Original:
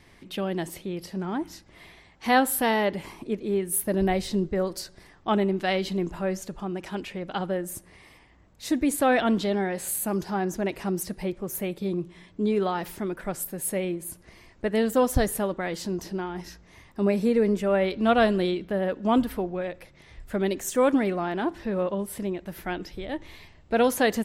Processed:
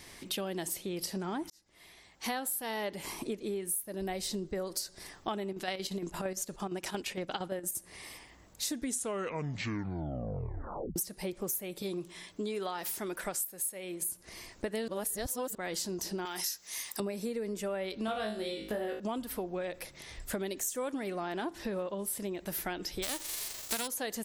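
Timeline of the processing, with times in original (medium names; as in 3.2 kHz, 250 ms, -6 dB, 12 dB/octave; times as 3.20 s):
1.50–2.91 s: fade in
5.45–7.76 s: square tremolo 8.7 Hz, depth 60%, duty 65%
8.65 s: tape stop 2.31 s
11.82–14.02 s: bass shelf 410 Hz -7.5 dB
14.88–15.55 s: reverse
16.25–17.00 s: tilt EQ +4.5 dB/octave
18.06–19.00 s: flutter echo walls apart 3.2 m, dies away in 0.37 s
23.02–23.86 s: formants flattened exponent 0.3
whole clip: tone controls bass -5 dB, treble +12 dB; compression 12:1, threshold -35 dBFS; trim +2.5 dB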